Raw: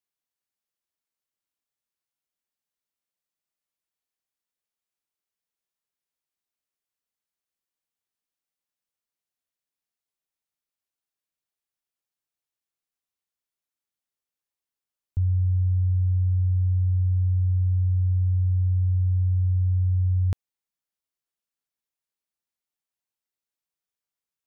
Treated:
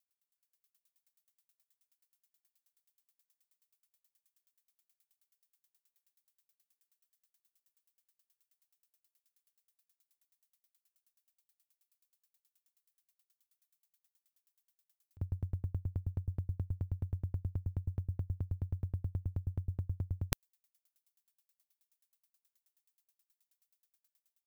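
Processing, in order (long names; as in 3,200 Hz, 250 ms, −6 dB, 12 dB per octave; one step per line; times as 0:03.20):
automatic gain control gain up to 9.5 dB
spectral tilt +4 dB per octave
tremolo with a ramp in dB decaying 9.4 Hz, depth 37 dB
level −2.5 dB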